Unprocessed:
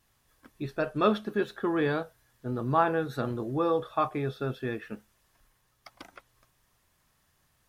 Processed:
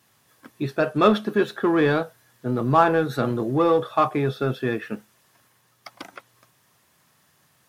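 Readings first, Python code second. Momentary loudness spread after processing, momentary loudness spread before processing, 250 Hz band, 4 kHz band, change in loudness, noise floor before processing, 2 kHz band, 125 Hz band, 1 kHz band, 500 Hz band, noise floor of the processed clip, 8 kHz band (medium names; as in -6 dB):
14 LU, 13 LU, +8.0 dB, +8.0 dB, +7.5 dB, -71 dBFS, +7.5 dB, +7.5 dB, +7.0 dB, +7.5 dB, -63 dBFS, no reading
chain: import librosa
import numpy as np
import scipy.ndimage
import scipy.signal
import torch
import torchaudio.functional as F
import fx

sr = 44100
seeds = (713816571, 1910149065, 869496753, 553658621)

p1 = scipy.signal.sosfilt(scipy.signal.butter(4, 110.0, 'highpass', fs=sr, output='sos'), x)
p2 = np.clip(p1, -10.0 ** (-28.0 / 20.0), 10.0 ** (-28.0 / 20.0))
p3 = p1 + F.gain(torch.from_numpy(p2), -9.0).numpy()
y = F.gain(torch.from_numpy(p3), 6.0).numpy()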